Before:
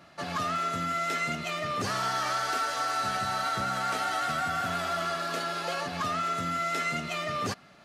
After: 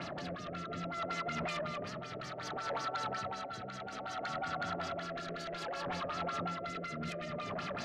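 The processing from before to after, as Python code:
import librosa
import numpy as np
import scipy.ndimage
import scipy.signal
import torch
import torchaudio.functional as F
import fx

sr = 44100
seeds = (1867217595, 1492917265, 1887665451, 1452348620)

p1 = scipy.signal.sosfilt(scipy.signal.butter(2, 74.0, 'highpass', fs=sr, output='sos'), x)
p2 = fx.tilt_shelf(p1, sr, db=3.5, hz=1100.0)
p3 = fx.over_compress(p2, sr, threshold_db=-42.0, ratio=-1.0)
p4 = p3 + fx.echo_filtered(p3, sr, ms=281, feedback_pct=63, hz=4500.0, wet_db=-5.5, dry=0)
p5 = fx.filter_lfo_lowpass(p4, sr, shape='sine', hz=5.4, low_hz=490.0, high_hz=6500.0, q=3.3)
p6 = fx.fold_sine(p5, sr, drive_db=5, ceiling_db=-26.0)
p7 = fx.rotary(p6, sr, hz=0.6)
y = p7 * 10.0 ** (-5.5 / 20.0)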